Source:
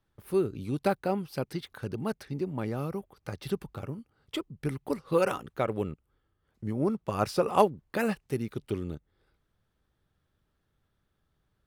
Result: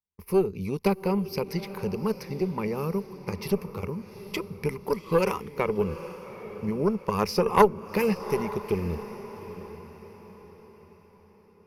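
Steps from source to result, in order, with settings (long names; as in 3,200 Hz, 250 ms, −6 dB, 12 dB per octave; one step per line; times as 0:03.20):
noise gate −50 dBFS, range −30 dB
EQ curve with evenly spaced ripples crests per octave 0.83, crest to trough 14 dB
in parallel at +1 dB: downward compressor, threshold −33 dBFS, peak gain reduction 18.5 dB
on the sum: harmonic generator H 2 −8 dB, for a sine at −4.5 dBFS
feedback delay with all-pass diffusion 813 ms, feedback 42%, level −13 dB
level −2 dB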